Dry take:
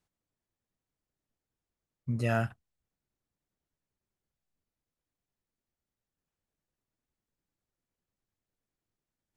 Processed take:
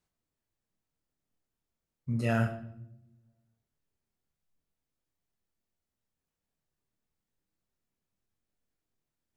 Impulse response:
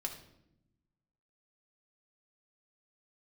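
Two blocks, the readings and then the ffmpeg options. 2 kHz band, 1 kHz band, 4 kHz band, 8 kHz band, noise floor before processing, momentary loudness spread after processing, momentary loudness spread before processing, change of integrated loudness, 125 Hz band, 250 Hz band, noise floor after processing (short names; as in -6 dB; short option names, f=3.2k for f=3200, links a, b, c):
0.0 dB, -1.0 dB, +0.5 dB, 0.0 dB, under -85 dBFS, 19 LU, 10 LU, +0.5 dB, +1.0 dB, +3.0 dB, under -85 dBFS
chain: -filter_complex "[0:a]asplit=2[a][b];[1:a]atrim=start_sample=2205,adelay=26[c];[b][c]afir=irnorm=-1:irlink=0,volume=-3dB[d];[a][d]amix=inputs=2:normalize=0,volume=-1.5dB"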